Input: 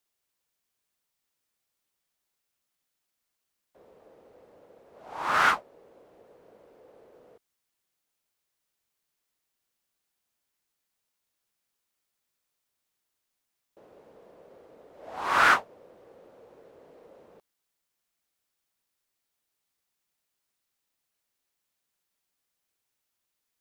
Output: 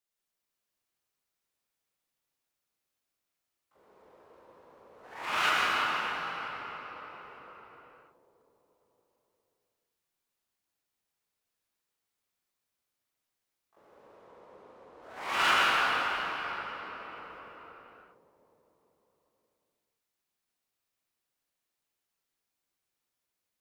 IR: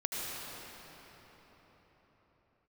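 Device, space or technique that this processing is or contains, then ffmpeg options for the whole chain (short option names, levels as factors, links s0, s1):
shimmer-style reverb: -filter_complex "[0:a]asettb=1/sr,asplit=3[s0][s1][s2];[s0]atrim=end=14.004[s3];[s1]atrim=start=14:end=15.03,asetpts=PTS-STARTPTS,afade=t=in:d=0.004:c=qsin,afade=t=out:st=1.026:d=0.004:c=qsin,lowpass=7200[s4];[s2]atrim=start=15.026[s5];[s3][s4]acrossfade=d=0.004:c1=hsin:c2=qsin[s6];[s6][s5]acrossfade=d=0.004:c1=qsin:c2=hsin,asplit=2[s7][s8];[s8]asetrate=88200,aresample=44100,atempo=0.5,volume=0.631[s9];[s7][s9]amix=inputs=2:normalize=0[s10];[1:a]atrim=start_sample=2205[s11];[s10][s11]afir=irnorm=-1:irlink=0,volume=0.398"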